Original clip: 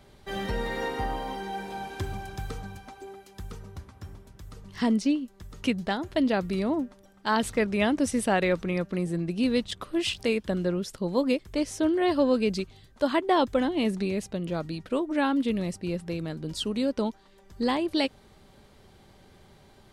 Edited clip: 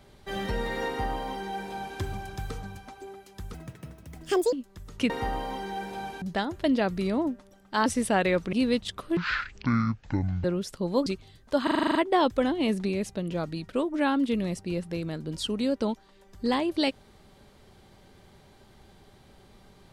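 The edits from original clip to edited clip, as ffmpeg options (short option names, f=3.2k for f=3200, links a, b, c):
-filter_complex "[0:a]asplit=18[a][b][c][d][e][f][g][h][i][j][k][l][m][n][o][p][q][r];[a]atrim=end=3.544[s];[b]atrim=start=3.54:end=5.17,asetpts=PTS-STARTPTS,asetrate=72765,aresample=44100,atrim=end_sample=43565,asetpts=PTS-STARTPTS[t];[c]atrim=start=5.166:end=5.742[u];[d]atrim=start=0.868:end=1.992[v];[e]atrim=start=5.738:end=7.382[w];[f]atrim=start=8.028:end=8.702[x];[g]atrim=start=9.358:end=10.004[y];[h]atrim=start=10:end=10.65,asetpts=PTS-STARTPTS,asetrate=22491,aresample=44100[z];[i]atrim=start=10.646:end=11.272[aa];[j]atrim=start=12.548:end=13.162[ab];[k]atrim=start=13.118:end=13.162[ac];[l]atrim=start=13.118:end=13.162[ad];[m]atrim=start=13.118:end=13.162[ae];[n]atrim=start=13.118:end=13.162[af];[o]atrim=start=13.118:end=13.162[ag];[p]atrim=start=13.118:end=13.162[ah];[q]atrim=start=13.118:end=13.162[ai];[r]atrim=start=13.118[aj];[s][t]acrossfade=d=0.004:c1=hsin:c2=hsin[ak];[ak][u]acrossfade=d=0.004:c1=hsin:c2=hsin[al];[al][v]acrossfade=d=0.004:c1=hsin:c2=hsin[am];[am][w]acrossfade=d=0.004:c1=hsin:c2=hsin[an];[an][x]acrossfade=d=0.004:c1=hsin:c2=hsin[ao];[ao][y]acrossfade=d=0.004:c1=hsin:c2=hsin[ap];[ap][z]acrossfade=d=0.004:c1=hsin:c2=hsin[aq];[aq][aa]acrossfade=d=0.004:c1=hsin:c2=hsin[ar];[ar][ab]acrossfade=d=0.004:c1=hsin:c2=hsin[as];[as][ac]acrossfade=d=0.004:c1=hsin:c2=hsin[at];[at][ad]acrossfade=d=0.004:c1=hsin:c2=hsin[au];[au][ae]acrossfade=d=0.004:c1=hsin:c2=hsin[av];[av][af]acrossfade=d=0.004:c1=hsin:c2=hsin[aw];[aw][ag]acrossfade=d=0.004:c1=hsin:c2=hsin[ax];[ax][ah]acrossfade=d=0.004:c1=hsin:c2=hsin[ay];[ay][ai]acrossfade=d=0.004:c1=hsin:c2=hsin[az];[az][aj]acrossfade=d=0.004:c1=hsin:c2=hsin"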